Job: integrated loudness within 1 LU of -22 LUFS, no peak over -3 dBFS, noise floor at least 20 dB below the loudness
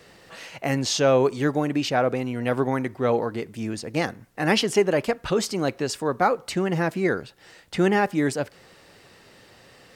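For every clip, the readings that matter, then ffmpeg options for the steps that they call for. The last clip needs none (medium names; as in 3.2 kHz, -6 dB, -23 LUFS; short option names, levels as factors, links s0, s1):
loudness -24.0 LUFS; peak level -7.5 dBFS; loudness target -22.0 LUFS
-> -af "volume=1.26"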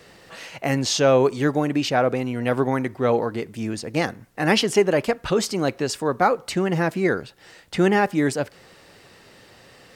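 loudness -22.0 LUFS; peak level -5.5 dBFS; noise floor -51 dBFS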